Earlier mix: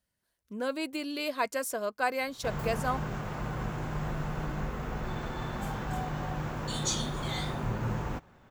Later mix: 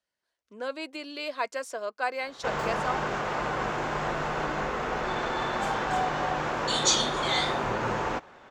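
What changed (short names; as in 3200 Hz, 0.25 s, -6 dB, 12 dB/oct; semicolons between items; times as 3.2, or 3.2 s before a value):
background +10.5 dB; master: add three-band isolator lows -17 dB, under 320 Hz, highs -22 dB, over 7600 Hz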